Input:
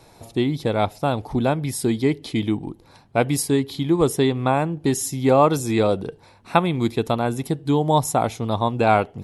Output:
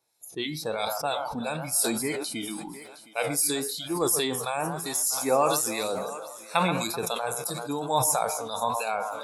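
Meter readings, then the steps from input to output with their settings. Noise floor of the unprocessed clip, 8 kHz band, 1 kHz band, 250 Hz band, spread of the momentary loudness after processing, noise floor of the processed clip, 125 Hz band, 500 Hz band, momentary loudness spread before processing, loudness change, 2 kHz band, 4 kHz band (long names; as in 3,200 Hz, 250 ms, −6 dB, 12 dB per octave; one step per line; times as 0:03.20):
−52 dBFS, +4.0 dB, −5.5 dB, −12.0 dB, 10 LU, −48 dBFS, −14.5 dB, −8.0 dB, 7 LU, −5.5 dB, −3.0 dB, 0.0 dB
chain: fade-out on the ending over 0.61 s
RIAA equalisation recording
de-essing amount 25%
two-band tremolo in antiphase 3 Hz, depth 50%, crossover 1,800 Hz
parametric band 85 Hz −7 dB 0.52 octaves
on a send: delay that swaps between a low-pass and a high-pass 128 ms, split 2,100 Hz, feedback 76%, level −11.5 dB
on the sum: noise reduction from a noise print of the clip's start 21 dB
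flanger 1 Hz, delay 7.5 ms, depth 6.2 ms, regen +78%
feedback echo with a high-pass in the loop 714 ms, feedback 36%, high-pass 390 Hz, level −20 dB
level that may fall only so fast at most 33 dB per second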